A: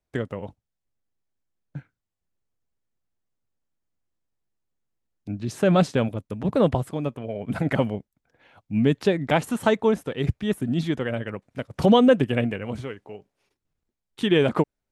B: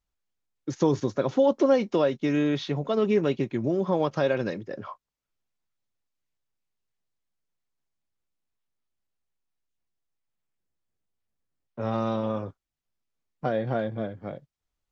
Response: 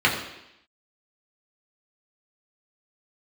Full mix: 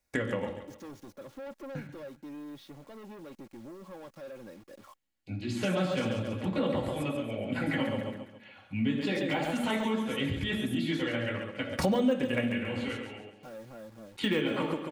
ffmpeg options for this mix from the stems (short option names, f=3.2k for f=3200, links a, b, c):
-filter_complex "[0:a]deesser=0.9,highshelf=f=2.1k:g=11.5,volume=-1.5dB,asplit=3[a][b][c];[b]volume=-20dB[d];[c]volume=-11dB[e];[1:a]acrusher=bits=6:mix=0:aa=0.000001,asoftclip=type=tanh:threshold=-27dB,adynamicequalizer=threshold=0.00631:dfrequency=1500:dqfactor=0.7:tfrequency=1500:tqfactor=0.7:attack=5:release=100:ratio=0.375:range=1.5:mode=cutabove:tftype=highshelf,volume=-15dB,asplit=2[f][g];[g]apad=whole_len=657753[h];[a][h]sidechaingate=range=-33dB:threshold=-56dB:ratio=16:detection=peak[i];[2:a]atrim=start_sample=2205[j];[d][j]afir=irnorm=-1:irlink=0[k];[e]aecho=0:1:138|276|414|552|690|828:1|0.41|0.168|0.0689|0.0283|0.0116[l];[i][f][k][l]amix=inputs=4:normalize=0,aecho=1:1:3.6:0.41,acompressor=threshold=-28dB:ratio=3"